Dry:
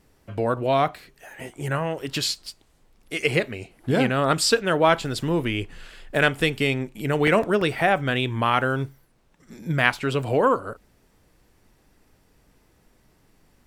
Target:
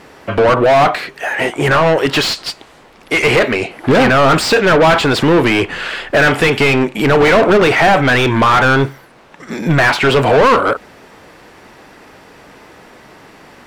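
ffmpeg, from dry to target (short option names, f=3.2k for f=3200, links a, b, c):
-filter_complex "[0:a]asplit=2[a][b];[b]highpass=f=720:p=1,volume=35dB,asoftclip=type=tanh:threshold=-1.5dB[c];[a][c]amix=inputs=2:normalize=0,lowpass=f=2.3k:p=1,volume=-6dB,highshelf=f=5.5k:g=-5"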